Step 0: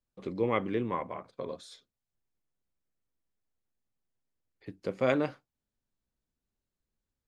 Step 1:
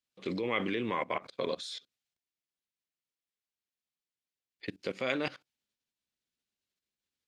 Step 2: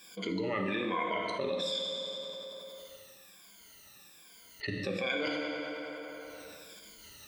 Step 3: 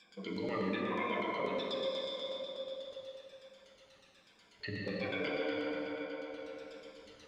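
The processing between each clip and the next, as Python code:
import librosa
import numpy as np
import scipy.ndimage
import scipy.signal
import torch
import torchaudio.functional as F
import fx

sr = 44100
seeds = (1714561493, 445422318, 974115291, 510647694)

y1 = fx.level_steps(x, sr, step_db=20)
y1 = fx.weighting(y1, sr, curve='D')
y1 = y1 * 10.0 ** (8.0 / 20.0)
y2 = fx.spec_ripple(y1, sr, per_octave=1.8, drift_hz=-1.2, depth_db=22)
y2 = fx.rev_fdn(y2, sr, rt60_s=1.5, lf_ratio=0.85, hf_ratio=0.8, size_ms=30.0, drr_db=2.5)
y2 = fx.env_flatten(y2, sr, amount_pct=70)
y2 = y2 * 10.0 ** (-9.0 / 20.0)
y3 = y2 + 10.0 ** (-15.0 / 20.0) * np.pad(y2, (int(843 * sr / 1000.0), 0))[:len(y2)]
y3 = fx.filter_lfo_lowpass(y3, sr, shape='saw_down', hz=8.2, low_hz=410.0, high_hz=5900.0, q=1.3)
y3 = fx.rev_gated(y3, sr, seeds[0], gate_ms=440, shape='flat', drr_db=-1.0)
y3 = y3 * 10.0 ** (-6.5 / 20.0)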